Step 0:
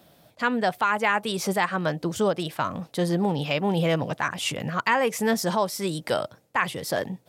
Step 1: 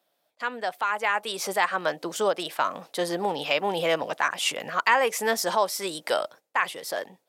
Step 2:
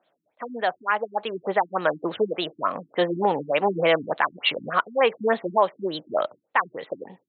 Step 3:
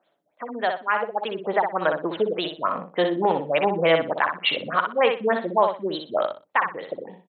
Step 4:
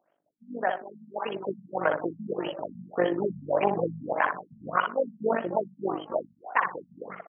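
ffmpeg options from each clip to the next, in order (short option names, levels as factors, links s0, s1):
-af "agate=range=0.316:threshold=0.00562:ratio=16:detection=peak,dynaudnorm=f=360:g=7:m=3.76,highpass=470,volume=0.562"
-filter_complex "[0:a]asplit=2[s0][s1];[s1]alimiter=limit=0.188:level=0:latency=1:release=118,volume=0.891[s2];[s0][s2]amix=inputs=2:normalize=0,afftfilt=real='re*lt(b*sr/1024,320*pow(4400/320,0.5+0.5*sin(2*PI*3.4*pts/sr)))':imag='im*lt(b*sr/1024,320*pow(4400/320,0.5+0.5*sin(2*PI*3.4*pts/sr)))':win_size=1024:overlap=0.75"
-af "aecho=1:1:61|122|183:0.501|0.11|0.0243"
-filter_complex "[0:a]asplit=5[s0][s1][s2][s3][s4];[s1]adelay=273,afreqshift=140,volume=0.251[s5];[s2]adelay=546,afreqshift=280,volume=0.111[s6];[s3]adelay=819,afreqshift=420,volume=0.0484[s7];[s4]adelay=1092,afreqshift=560,volume=0.0214[s8];[s0][s5][s6][s7][s8]amix=inputs=5:normalize=0,tremolo=f=49:d=0.71,afftfilt=real='re*lt(b*sr/1024,220*pow(3400/220,0.5+0.5*sin(2*PI*1.7*pts/sr)))':imag='im*lt(b*sr/1024,220*pow(3400/220,0.5+0.5*sin(2*PI*1.7*pts/sr)))':win_size=1024:overlap=0.75"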